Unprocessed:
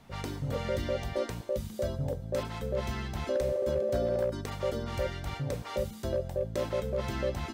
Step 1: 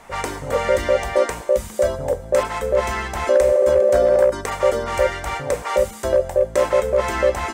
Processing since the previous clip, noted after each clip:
octave-band graphic EQ 125/250/500/1,000/2,000/4,000/8,000 Hz −11/−4/+6/+7/+7/−5/+10 dB
level +8.5 dB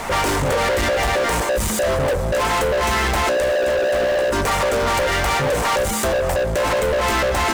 brickwall limiter −15.5 dBFS, peak gain reduction 10.5 dB
downward compressor, threshold −24 dBFS, peak gain reduction 5.5 dB
leveller curve on the samples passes 5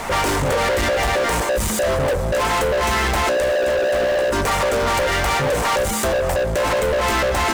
no processing that can be heard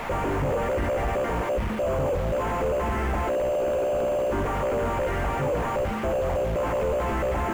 linear delta modulator 16 kbit/s, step −30.5 dBFS
in parallel at −9.5 dB: bit reduction 5 bits
on the sum: level −7 dB

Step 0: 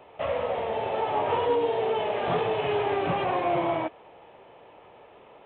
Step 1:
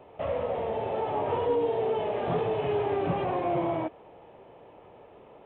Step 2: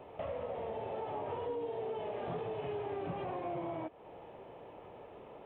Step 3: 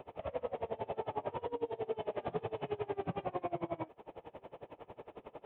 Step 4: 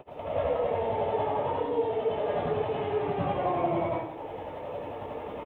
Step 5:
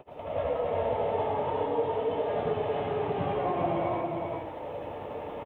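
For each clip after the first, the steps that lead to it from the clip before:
in parallel at −3 dB: brickwall limiter −25 dBFS, peak gain reduction 9 dB; on the sum: tilt shelving filter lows +5.5 dB, about 750 Hz; level −6 dB
downward compressor 3 to 1, threshold −40 dBFS, peak gain reduction 13 dB
tremolo with a sine in dB 11 Hz, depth 26 dB; level +6 dB
speech leveller within 4 dB 2 s; double-tracking delay 14 ms −13.5 dB; dense smooth reverb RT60 0.75 s, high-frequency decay 0.9×, pre-delay 100 ms, DRR −9.5 dB
single-tap delay 402 ms −3.5 dB; level −2 dB

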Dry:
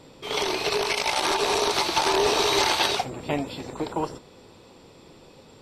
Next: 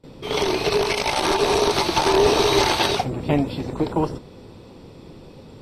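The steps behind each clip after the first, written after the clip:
noise gate with hold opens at −41 dBFS
low-shelf EQ 390 Hz +11.5 dB
notch filter 7,200 Hz, Q 7.1
level +1 dB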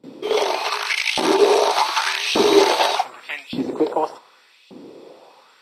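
auto-filter high-pass saw up 0.85 Hz 210–3,000 Hz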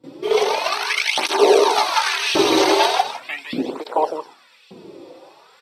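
single-tap delay 157 ms −8 dB
through-zero flanger with one copy inverted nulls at 0.39 Hz, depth 4.9 ms
level +3.5 dB

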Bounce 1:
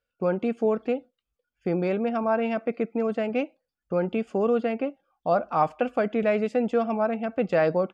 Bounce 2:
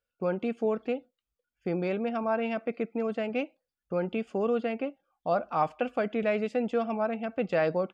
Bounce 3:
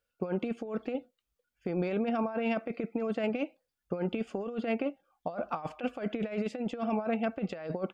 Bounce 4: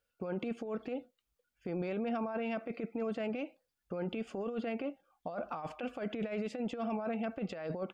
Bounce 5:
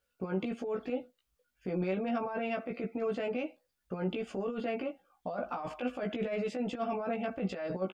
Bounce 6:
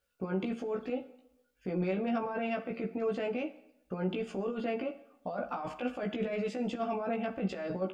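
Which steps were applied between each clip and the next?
dynamic equaliser 3,200 Hz, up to +4 dB, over −47 dBFS, Q 1; level −4.5 dB
compressor whose output falls as the input rises −31 dBFS, ratio −0.5
brickwall limiter −28.5 dBFS, peak gain reduction 9 dB
double-tracking delay 16 ms −2 dB; level +1 dB
dense smooth reverb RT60 0.87 s, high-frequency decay 0.85×, DRR 12.5 dB

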